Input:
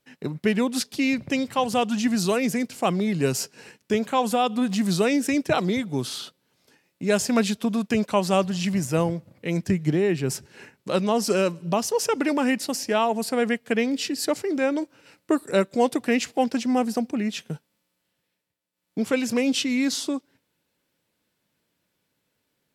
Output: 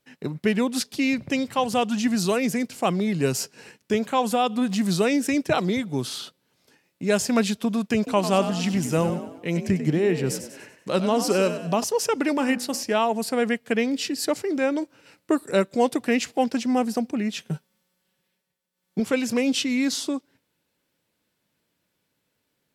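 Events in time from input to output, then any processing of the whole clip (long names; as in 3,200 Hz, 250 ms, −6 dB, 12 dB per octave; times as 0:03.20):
0:07.97–0:11.84: echo with shifted repeats 96 ms, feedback 45%, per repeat +48 Hz, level −10 dB
0:12.35–0:12.83: hum removal 61.22 Hz, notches 29
0:17.50–0:19.00: comb filter 5.3 ms, depth 85%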